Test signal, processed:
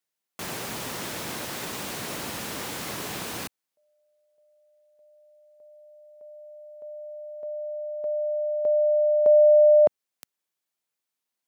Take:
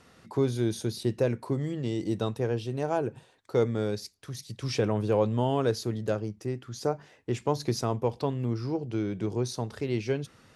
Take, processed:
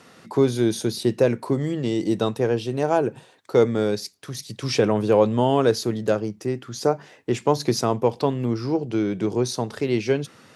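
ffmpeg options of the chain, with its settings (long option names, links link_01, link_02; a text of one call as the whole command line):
ffmpeg -i in.wav -af "highpass=150,volume=8dB" out.wav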